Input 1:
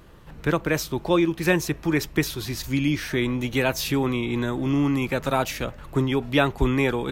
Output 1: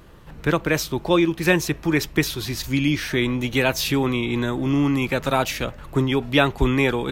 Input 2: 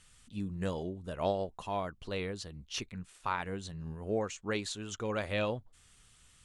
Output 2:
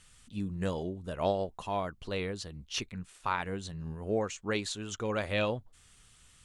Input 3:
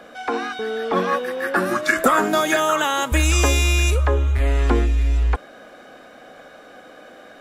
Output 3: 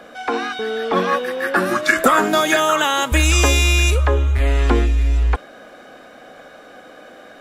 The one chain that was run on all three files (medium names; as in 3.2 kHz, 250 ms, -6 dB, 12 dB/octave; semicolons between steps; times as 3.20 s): dynamic bell 3.3 kHz, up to +3 dB, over -37 dBFS, Q 0.91; trim +2 dB